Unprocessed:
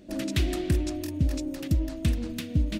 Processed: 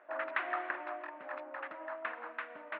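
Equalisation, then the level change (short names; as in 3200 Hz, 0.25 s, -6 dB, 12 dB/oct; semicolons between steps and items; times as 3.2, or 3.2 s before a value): HPF 930 Hz 24 dB/oct; inverse Chebyshev low-pass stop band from 8100 Hz, stop band 80 dB; air absorption 190 m; +14.5 dB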